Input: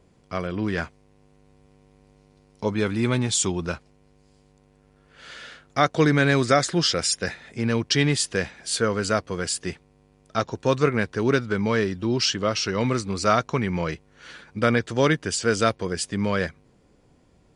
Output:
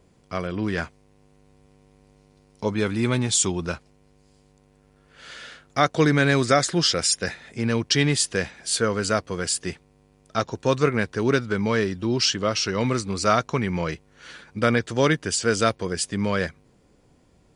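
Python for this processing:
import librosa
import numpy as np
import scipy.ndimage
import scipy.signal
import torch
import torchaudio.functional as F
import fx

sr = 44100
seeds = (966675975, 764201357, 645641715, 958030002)

y = fx.high_shelf(x, sr, hz=6600.0, db=4.5)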